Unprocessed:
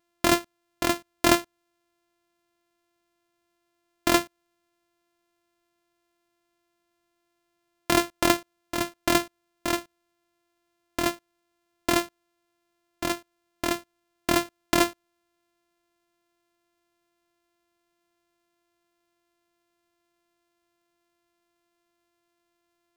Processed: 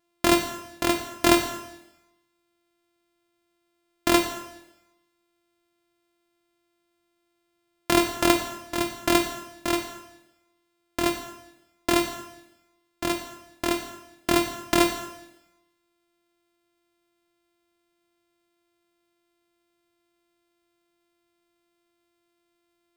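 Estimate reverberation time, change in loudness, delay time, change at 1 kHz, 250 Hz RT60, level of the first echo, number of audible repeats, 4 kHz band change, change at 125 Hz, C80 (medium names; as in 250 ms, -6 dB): 0.95 s, +1.5 dB, no echo, +1.0 dB, 1.0 s, no echo, no echo, +1.5 dB, +1.0 dB, 9.5 dB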